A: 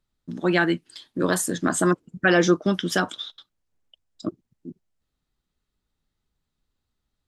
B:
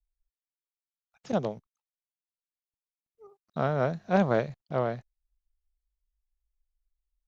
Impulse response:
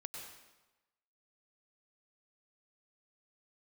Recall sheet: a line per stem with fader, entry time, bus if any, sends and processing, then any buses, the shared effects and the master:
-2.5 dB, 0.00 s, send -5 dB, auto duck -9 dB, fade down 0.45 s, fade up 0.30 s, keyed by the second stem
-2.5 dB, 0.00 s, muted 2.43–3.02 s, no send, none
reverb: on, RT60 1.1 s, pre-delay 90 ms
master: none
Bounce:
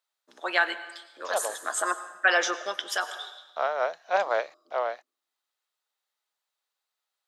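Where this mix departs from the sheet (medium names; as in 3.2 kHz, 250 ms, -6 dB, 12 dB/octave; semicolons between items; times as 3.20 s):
stem B -2.5 dB -> +4.0 dB; master: extra high-pass 610 Hz 24 dB/octave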